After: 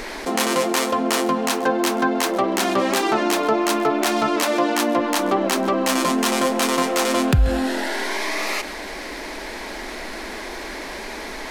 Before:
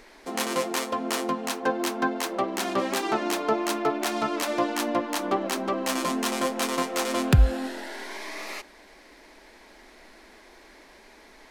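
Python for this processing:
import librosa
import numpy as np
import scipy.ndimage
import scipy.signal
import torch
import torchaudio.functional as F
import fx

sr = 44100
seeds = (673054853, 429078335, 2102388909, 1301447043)

y = fx.steep_highpass(x, sr, hz=160.0, slope=36, at=(4.36, 4.97))
y = y + 10.0 ** (-23.0 / 20.0) * np.pad(y, (int(133 * sr / 1000.0), 0))[:len(y)]
y = fx.env_flatten(y, sr, amount_pct=50)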